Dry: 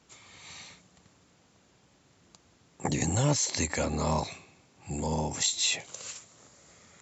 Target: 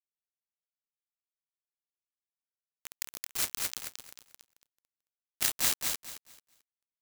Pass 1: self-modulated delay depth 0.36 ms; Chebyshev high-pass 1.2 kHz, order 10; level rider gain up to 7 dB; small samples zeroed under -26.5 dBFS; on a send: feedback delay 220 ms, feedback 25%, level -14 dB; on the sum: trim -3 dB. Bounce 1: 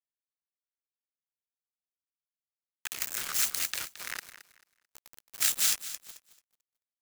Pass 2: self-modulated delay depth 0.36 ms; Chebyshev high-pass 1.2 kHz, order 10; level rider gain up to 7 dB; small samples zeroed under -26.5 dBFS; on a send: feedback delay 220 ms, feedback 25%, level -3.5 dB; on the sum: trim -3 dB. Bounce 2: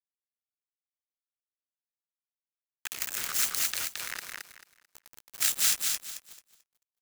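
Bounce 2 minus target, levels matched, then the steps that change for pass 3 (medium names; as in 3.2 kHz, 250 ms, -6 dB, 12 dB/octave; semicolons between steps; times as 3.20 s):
small samples zeroed: distortion -9 dB
change: small samples zeroed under -16.5 dBFS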